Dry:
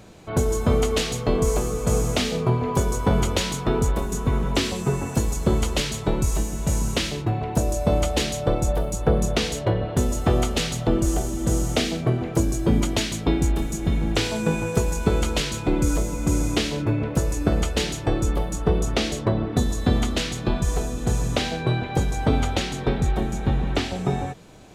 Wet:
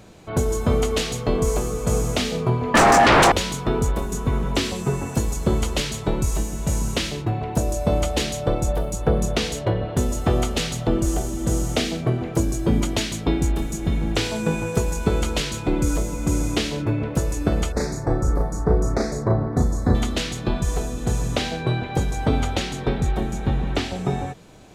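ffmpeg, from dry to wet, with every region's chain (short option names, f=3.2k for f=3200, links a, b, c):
-filter_complex "[0:a]asettb=1/sr,asplit=3[a][b][c];[a]atrim=end=2.744[d];[b]atrim=start=2.74:end=3.32,asetpts=PTS-STARTPTS,afade=t=in:d=0.004:c=qsin,afade=t=out:st=0.576:d=0.004:c=qsin,lowpass=5.9k,aeval=exprs='0.422*sin(PI/2*6.31*val(0)/0.422)':c=same,aeval=exprs='val(0)*sin(2*PI*750*n/s)':c=same[e];[c]atrim=start=3.316[f];[d][e]acrossfade=d=0.004:c1=hsin:c2=qsin[g];[g][f]acrossfade=d=0.004:c1=qsin:c2=hsin,asettb=1/sr,asplit=3[h][i][j];[h]atrim=end=17.724[k];[i]atrim=start=17.72:end=19.95,asetpts=PTS-STARTPTS,afade=t=in:d=0.004:c=qsin,afade=t=out:st=2.226:d=0.004:c=qsin,asuperstop=centerf=3000:order=4:qfactor=0.98,highshelf=f=6.4k:g=-9,asplit=2[l][m];[m]adelay=35,volume=-2.5dB[n];[l][n]amix=inputs=2:normalize=0,atrim=end_sample=98343[o];[j]atrim=start=19.946[p];[k][o]acrossfade=d=0.004:c1=hsin:c2=qsin[q];[q][p]acrossfade=d=0.004:c1=qsin:c2=hsin"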